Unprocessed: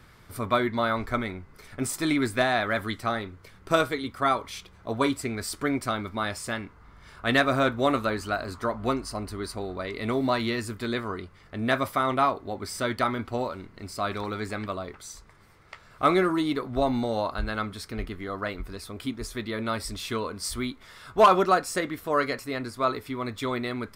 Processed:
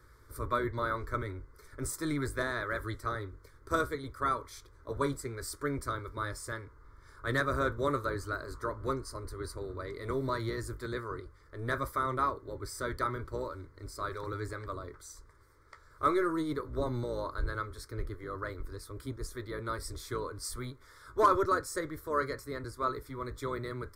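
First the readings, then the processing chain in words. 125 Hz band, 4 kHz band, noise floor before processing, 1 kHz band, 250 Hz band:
-3.5 dB, -12.5 dB, -53 dBFS, -7.0 dB, -9.5 dB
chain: octaver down 1 oct, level +1 dB; fixed phaser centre 740 Hz, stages 6; gain -5 dB

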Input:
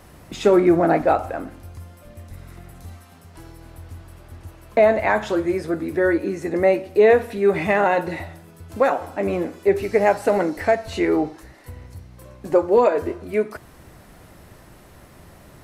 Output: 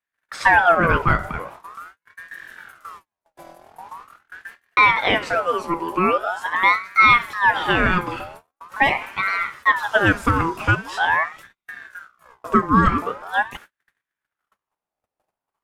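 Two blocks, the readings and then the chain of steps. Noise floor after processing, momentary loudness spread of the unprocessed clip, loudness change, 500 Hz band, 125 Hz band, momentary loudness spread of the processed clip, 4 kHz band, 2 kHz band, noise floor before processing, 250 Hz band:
under -85 dBFS, 12 LU, +1.5 dB, -9.0 dB, +5.0 dB, 21 LU, +10.5 dB, +10.0 dB, -47 dBFS, -3.5 dB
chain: gate -40 dBFS, range -42 dB; ring modulator with a swept carrier 1200 Hz, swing 45%, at 0.43 Hz; gain +3 dB

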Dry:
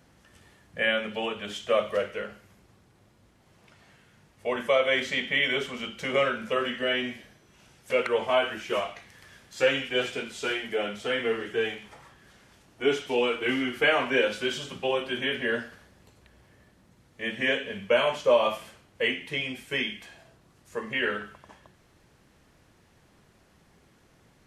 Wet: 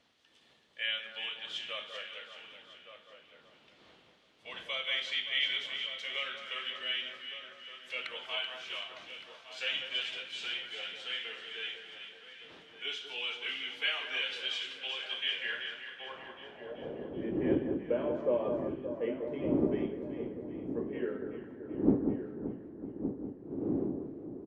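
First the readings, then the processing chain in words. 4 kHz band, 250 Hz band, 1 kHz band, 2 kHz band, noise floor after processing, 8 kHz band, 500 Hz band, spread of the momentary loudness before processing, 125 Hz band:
-2.0 dB, 0.0 dB, -14.0 dB, -9.0 dB, -63 dBFS, -11.5 dB, -10.0 dB, 13 LU, -0.5 dB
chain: wind noise 290 Hz -34 dBFS; outdoor echo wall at 200 m, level -9 dB; band-pass sweep 3500 Hz -> 330 Hz, 15.2–17.26; on a send: echo with dull and thin repeats by turns 0.191 s, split 1600 Hz, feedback 72%, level -6 dB

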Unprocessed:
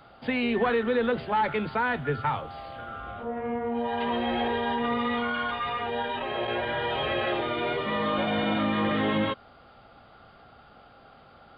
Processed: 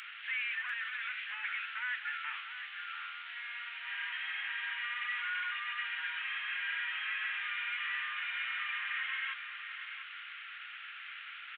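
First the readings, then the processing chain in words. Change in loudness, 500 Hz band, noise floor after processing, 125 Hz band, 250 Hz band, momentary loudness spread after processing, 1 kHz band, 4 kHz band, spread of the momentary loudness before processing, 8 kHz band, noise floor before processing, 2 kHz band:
-9.0 dB, under -40 dB, -47 dBFS, under -40 dB, under -40 dB, 10 LU, -16.0 dB, -5.0 dB, 8 LU, n/a, -54 dBFS, -1.0 dB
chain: delta modulation 16 kbps, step -37.5 dBFS; steep high-pass 1600 Hz 36 dB/oct; on a send: echo 0.694 s -10 dB; on the sum: gain +4.5 dB

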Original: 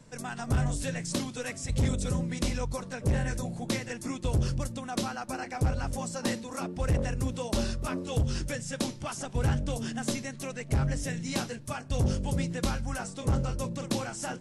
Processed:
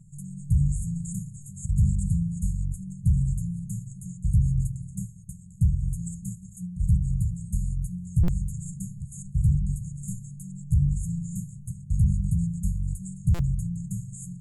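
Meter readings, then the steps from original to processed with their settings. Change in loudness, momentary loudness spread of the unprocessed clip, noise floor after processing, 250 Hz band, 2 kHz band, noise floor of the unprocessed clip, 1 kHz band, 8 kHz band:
+4.0 dB, 6 LU, -45 dBFS, +0.5 dB, under -20 dB, -44 dBFS, under -20 dB, -3.0 dB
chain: FFT band-reject 200–6500 Hz; high shelf 2900 Hz -8.5 dB; on a send: darkening echo 75 ms, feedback 70%, low-pass 2000 Hz, level -14.5 dB; on the sum: stuck buffer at 8.23/13.34, samples 256, times 8; gain +6 dB

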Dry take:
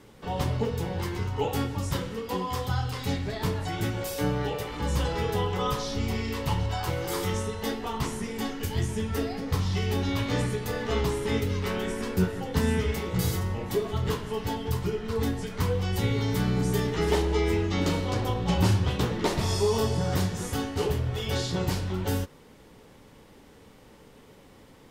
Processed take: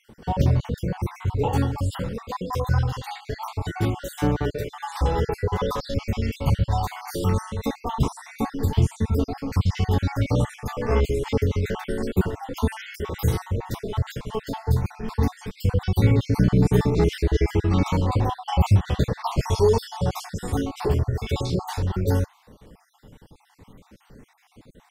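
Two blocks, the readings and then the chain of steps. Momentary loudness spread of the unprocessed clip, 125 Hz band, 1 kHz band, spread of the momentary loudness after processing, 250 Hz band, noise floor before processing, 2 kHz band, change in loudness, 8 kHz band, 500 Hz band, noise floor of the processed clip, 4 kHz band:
6 LU, +5.5 dB, +3.5 dB, 10 LU, +3.0 dB, -53 dBFS, -0.5 dB, +4.0 dB, -3.0 dB, +2.5 dB, -60 dBFS, -2.5 dB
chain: random spectral dropouts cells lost 48%; low shelf 380 Hz +8 dB; phaser 0.12 Hz, delay 3 ms, feedback 25%; dynamic EQ 900 Hz, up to +5 dB, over -42 dBFS, Q 0.97

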